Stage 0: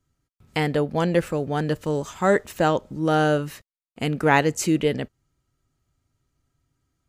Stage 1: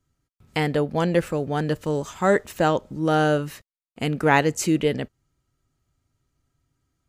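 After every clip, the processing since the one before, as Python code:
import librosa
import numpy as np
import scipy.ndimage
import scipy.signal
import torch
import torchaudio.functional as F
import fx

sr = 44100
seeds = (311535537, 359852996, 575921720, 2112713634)

y = x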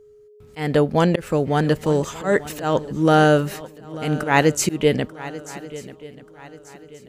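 y = fx.auto_swell(x, sr, attack_ms=187.0)
y = y + 10.0 ** (-52.0 / 20.0) * np.sin(2.0 * np.pi * 420.0 * np.arange(len(y)) / sr)
y = fx.echo_swing(y, sr, ms=1185, ratio=3, feedback_pct=34, wet_db=-17)
y = y * librosa.db_to_amplitude(5.5)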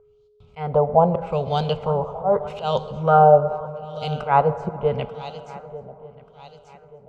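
y = fx.filter_lfo_lowpass(x, sr, shape='sine', hz=0.81, low_hz=740.0, high_hz=4000.0, q=2.8)
y = fx.fixed_phaser(y, sr, hz=740.0, stages=4)
y = fx.rev_plate(y, sr, seeds[0], rt60_s=3.0, hf_ratio=0.35, predelay_ms=0, drr_db=13.0)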